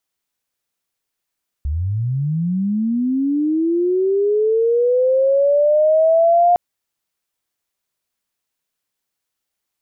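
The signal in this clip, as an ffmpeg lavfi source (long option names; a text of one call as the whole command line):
ffmpeg -f lavfi -i "aevalsrc='pow(10,(-18+8.5*t/4.91)/20)*sin(2*PI*(67*t+643*t*t/(2*4.91)))':duration=4.91:sample_rate=44100" out.wav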